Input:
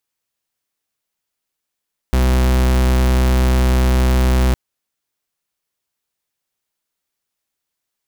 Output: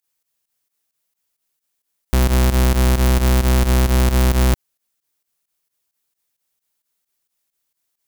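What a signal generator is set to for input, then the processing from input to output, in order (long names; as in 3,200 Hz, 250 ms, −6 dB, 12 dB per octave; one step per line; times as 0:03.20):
pulse wave 63.6 Hz, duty 43% −13.5 dBFS 2.41 s
high-shelf EQ 6,400 Hz +8 dB
fake sidechain pumping 132 BPM, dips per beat 2, −14 dB, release 85 ms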